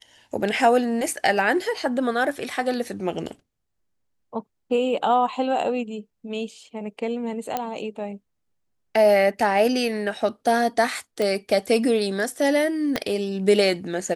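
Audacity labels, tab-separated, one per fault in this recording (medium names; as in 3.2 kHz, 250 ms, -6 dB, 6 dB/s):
7.570000	7.570000	pop -11 dBFS
11.220000	11.220000	pop -13 dBFS
12.960000	12.960000	pop -9 dBFS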